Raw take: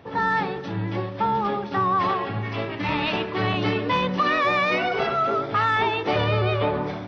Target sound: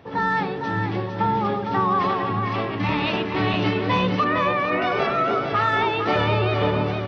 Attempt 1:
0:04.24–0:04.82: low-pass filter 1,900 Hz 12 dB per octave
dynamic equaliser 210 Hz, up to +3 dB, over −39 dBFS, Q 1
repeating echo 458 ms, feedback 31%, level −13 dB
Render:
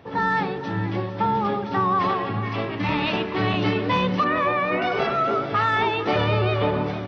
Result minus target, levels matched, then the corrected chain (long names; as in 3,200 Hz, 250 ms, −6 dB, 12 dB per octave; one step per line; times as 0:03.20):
echo-to-direct −7 dB
0:04.24–0:04.82: low-pass filter 1,900 Hz 12 dB per octave
dynamic equaliser 210 Hz, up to +3 dB, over −39 dBFS, Q 1
repeating echo 458 ms, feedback 31%, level −6 dB